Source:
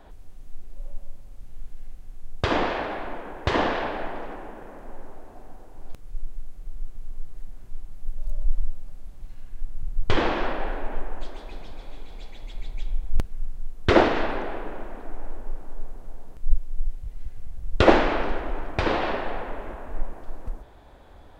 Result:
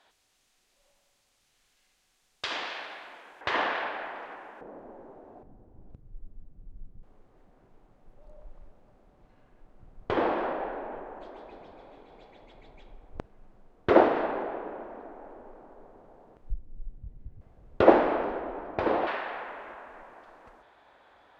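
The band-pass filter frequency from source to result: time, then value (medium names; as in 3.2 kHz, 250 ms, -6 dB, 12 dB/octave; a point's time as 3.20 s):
band-pass filter, Q 0.72
4.7 kHz
from 3.41 s 1.8 kHz
from 4.61 s 430 Hz
from 5.43 s 130 Hz
from 7.03 s 600 Hz
from 16.50 s 150 Hz
from 17.41 s 550 Hz
from 19.07 s 1.7 kHz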